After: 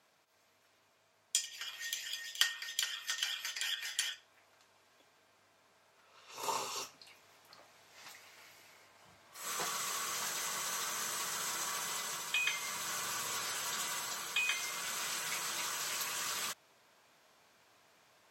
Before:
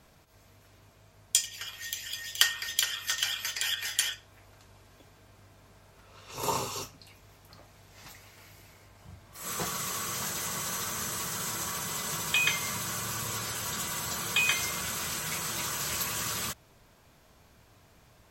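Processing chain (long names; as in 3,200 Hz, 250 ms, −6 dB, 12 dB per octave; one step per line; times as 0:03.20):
meter weighting curve A
speech leveller within 3 dB 0.5 s
level −6 dB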